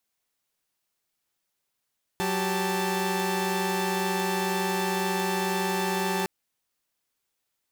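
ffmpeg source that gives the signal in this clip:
-f lavfi -i "aevalsrc='0.0447*((2*mod(185*t,1)-1)+(2*mod(392*t,1)-1)+(2*mod(880*t,1)-1))':d=4.06:s=44100"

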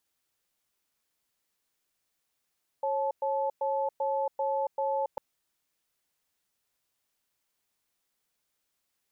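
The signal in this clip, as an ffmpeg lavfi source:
-f lavfi -i "aevalsrc='0.0355*(sin(2*PI*547*t)+sin(2*PI*867*t))*clip(min(mod(t,0.39),0.28-mod(t,0.39))/0.005,0,1)':d=2.35:s=44100"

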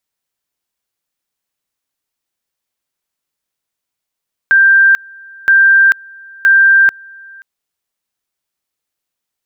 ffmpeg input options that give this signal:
-f lavfi -i "aevalsrc='pow(10,(-4.5-28*gte(mod(t,0.97),0.44))/20)*sin(2*PI*1580*t)':d=2.91:s=44100"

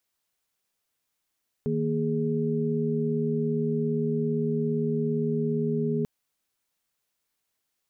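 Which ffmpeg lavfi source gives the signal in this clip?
-f lavfi -i "aevalsrc='0.0398*(sin(2*PI*155.56*t)+sin(2*PI*233.08*t)+sin(2*PI*415.3*t))':d=4.39:s=44100"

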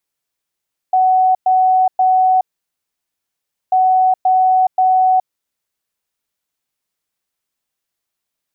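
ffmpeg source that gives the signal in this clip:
-f lavfi -i "aevalsrc='0.355*sin(2*PI*747*t)*clip(min(mod(mod(t,2.79),0.53),0.42-mod(mod(t,2.79),0.53))/0.005,0,1)*lt(mod(t,2.79),1.59)':d=5.58:s=44100"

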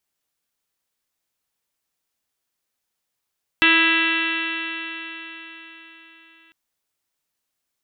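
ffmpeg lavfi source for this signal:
-f lavfi -i "aevalsrc='0.0841*pow(10,-3*t/4.31)*sin(2*PI*325.16*t)+0.0106*pow(10,-3*t/4.31)*sin(2*PI*651.27*t)+0.0398*pow(10,-3*t/4.31)*sin(2*PI*979.29*t)+0.0596*pow(10,-3*t/4.31)*sin(2*PI*1310.15*t)+0.112*pow(10,-3*t/4.31)*sin(2*PI*1644.79*t)+0.112*pow(10,-3*t/4.31)*sin(2*PI*1984.1*t)+0.0531*pow(10,-3*t/4.31)*sin(2*PI*2328.98*t)+0.168*pow(10,-3*t/4.31)*sin(2*PI*2680.3*t)+0.0668*pow(10,-3*t/4.31)*sin(2*PI*3038.88*t)+0.0631*pow(10,-3*t/4.31)*sin(2*PI*3405.53*t)+0.0316*pow(10,-3*t/4.31)*sin(2*PI*3781.03*t)+0.0133*pow(10,-3*t/4.31)*sin(2*PI*4166.11*t)':d=2.9:s=44100"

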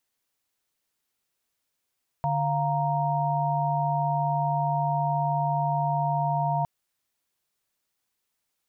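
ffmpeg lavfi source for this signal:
-f lavfi -i "aevalsrc='0.0447*(sin(2*PI*146.83*t)+sin(2*PI*698.46*t)+sin(2*PI*932.33*t))':d=4.41:s=44100"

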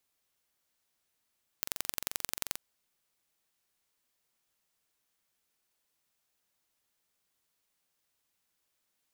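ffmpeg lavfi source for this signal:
-f lavfi -i "aevalsrc='0.631*eq(mod(n,1943),0)*(0.5+0.5*eq(mod(n,3886),0))':d=0.95:s=44100"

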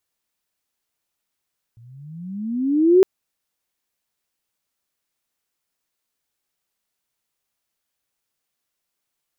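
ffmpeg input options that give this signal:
-f lavfi -i "aevalsrc='pow(10,(-7.5+36*(t/1.26-1))/20)*sin(2*PI*112*1.26/(21.5*log(2)/12)*(exp(21.5*log(2)/12*t/1.26)-1))':d=1.26:s=44100"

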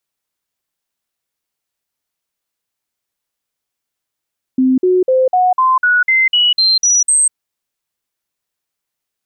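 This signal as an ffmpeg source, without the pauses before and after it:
-f lavfi -i "aevalsrc='0.376*clip(min(mod(t,0.25),0.2-mod(t,0.25))/0.005,0,1)*sin(2*PI*259*pow(2,floor(t/0.25)/2)*mod(t,0.25))':d=2.75:s=44100"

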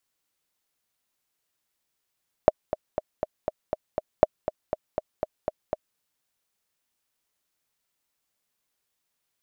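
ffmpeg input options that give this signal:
-f lavfi -i "aevalsrc='pow(10,(-1-12*gte(mod(t,7*60/240),60/240))/20)*sin(2*PI*621*mod(t,60/240))*exp(-6.91*mod(t,60/240)/0.03)':d=3.5:s=44100"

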